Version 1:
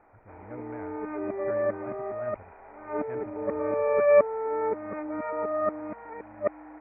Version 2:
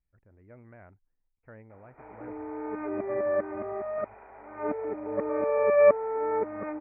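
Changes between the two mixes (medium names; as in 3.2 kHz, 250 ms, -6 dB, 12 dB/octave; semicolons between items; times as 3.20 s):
speech -6.5 dB; background: entry +1.70 s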